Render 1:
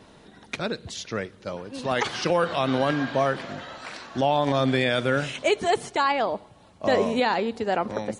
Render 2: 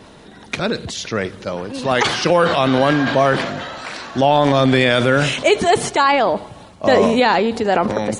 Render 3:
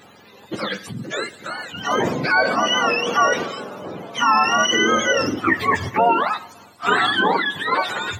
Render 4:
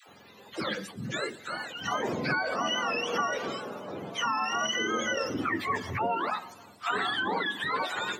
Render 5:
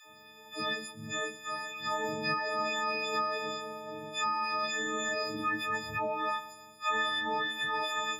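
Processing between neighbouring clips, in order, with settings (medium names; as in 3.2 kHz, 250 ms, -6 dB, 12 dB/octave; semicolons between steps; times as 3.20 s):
transient shaper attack 0 dB, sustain +7 dB; trim +8 dB
spectrum inverted on a logarithmic axis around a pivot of 880 Hz; tone controls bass -14 dB, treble -3 dB
compression, threshold -20 dBFS, peak gain reduction 8.5 dB; phase dispersion lows, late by 87 ms, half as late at 550 Hz; trim -6 dB
partials quantised in pitch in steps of 6 st; trim -6.5 dB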